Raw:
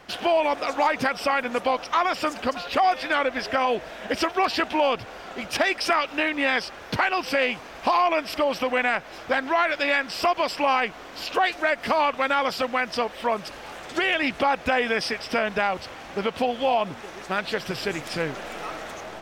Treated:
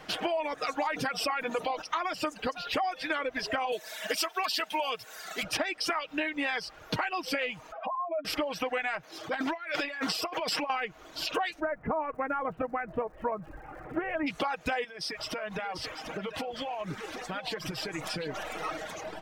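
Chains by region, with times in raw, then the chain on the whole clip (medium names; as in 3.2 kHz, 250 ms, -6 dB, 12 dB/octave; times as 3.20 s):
0.89–1.82 s: hum notches 50/100/150/200/250/300/350/400/450 Hz + level flattener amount 50%
3.72–5.43 s: RIAA curve recording + comb 4.6 ms, depth 33%
7.72–8.25 s: spectral contrast enhancement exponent 2.4 + compression 5:1, threshold -32 dBFS + cabinet simulation 240–6300 Hz, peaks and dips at 310 Hz -5 dB, 530 Hz +8 dB, 1.3 kHz +7 dB, 3.4 kHz +6 dB
9.03–10.70 s: high-pass 130 Hz + transient shaper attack -10 dB, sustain +8 dB + compressor with a negative ratio -27 dBFS, ratio -0.5
11.59–14.26 s: Bessel low-pass 1.2 kHz, order 8 + bass shelf 130 Hz +10 dB + crackle 250 per s -52 dBFS
14.84–18.43 s: compression 12:1, threshold -30 dBFS + delay 745 ms -7.5 dB
whole clip: reverb removal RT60 1.3 s; comb 6.4 ms, depth 42%; compression, threshold -28 dBFS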